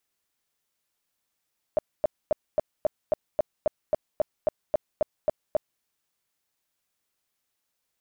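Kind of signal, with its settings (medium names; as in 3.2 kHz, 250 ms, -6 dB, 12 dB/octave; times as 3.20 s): tone bursts 614 Hz, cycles 10, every 0.27 s, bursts 15, -17.5 dBFS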